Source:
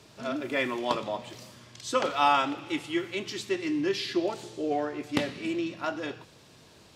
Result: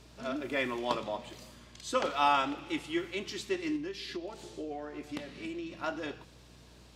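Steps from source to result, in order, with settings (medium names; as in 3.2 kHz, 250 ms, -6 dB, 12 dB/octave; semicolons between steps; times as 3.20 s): 1.26–1.94 s: band-stop 5.5 kHz, Q 11; 3.76–5.72 s: compression 6:1, threshold -33 dBFS, peak gain reduction 12.5 dB; hum 60 Hz, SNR 23 dB; trim -3.5 dB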